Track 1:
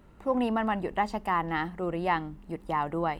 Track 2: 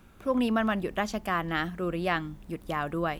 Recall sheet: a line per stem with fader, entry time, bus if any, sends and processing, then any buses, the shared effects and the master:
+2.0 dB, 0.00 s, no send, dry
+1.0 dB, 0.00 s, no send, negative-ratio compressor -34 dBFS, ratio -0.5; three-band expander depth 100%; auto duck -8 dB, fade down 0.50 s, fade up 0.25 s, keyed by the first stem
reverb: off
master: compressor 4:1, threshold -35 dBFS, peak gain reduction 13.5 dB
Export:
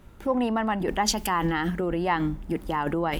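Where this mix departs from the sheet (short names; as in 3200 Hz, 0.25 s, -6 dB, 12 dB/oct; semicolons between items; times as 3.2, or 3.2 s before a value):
stem 2 +1.0 dB -> +10.5 dB; master: missing compressor 4:1, threshold -35 dBFS, peak gain reduction 13.5 dB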